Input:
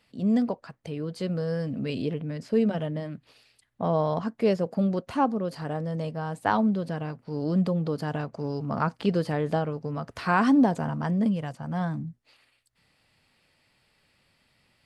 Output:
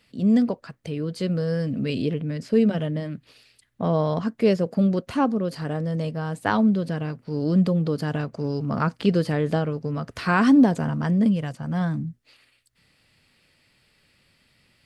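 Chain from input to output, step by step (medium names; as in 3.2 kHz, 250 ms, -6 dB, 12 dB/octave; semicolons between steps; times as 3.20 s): peaking EQ 830 Hz -6.5 dB 1 oct; trim +5 dB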